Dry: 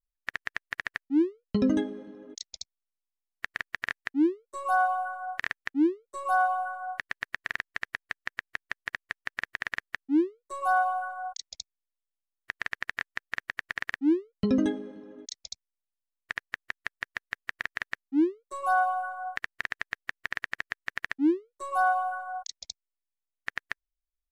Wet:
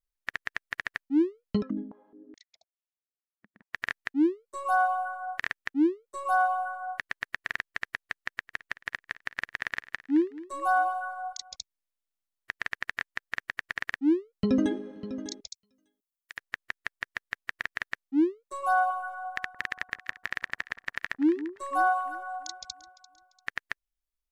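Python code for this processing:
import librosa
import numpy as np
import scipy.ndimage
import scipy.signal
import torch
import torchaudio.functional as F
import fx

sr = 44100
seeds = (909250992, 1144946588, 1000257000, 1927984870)

y = fx.filter_held_bandpass(x, sr, hz=4.7, low_hz=210.0, high_hz=2800.0, at=(1.61, 3.73), fade=0.02)
y = fx.echo_feedback(y, sr, ms=217, feedback_pct=43, wet_db=-18.5, at=(8.21, 11.56))
y = fx.echo_throw(y, sr, start_s=14.0, length_s=0.8, ms=600, feedback_pct=15, wet_db=-13.0)
y = fx.pre_emphasis(y, sr, coefficient=0.9, at=(15.46, 16.37), fade=0.02)
y = fx.echo_alternate(y, sr, ms=172, hz=1200.0, feedback_pct=60, wet_db=-12.0, at=(18.73, 23.49))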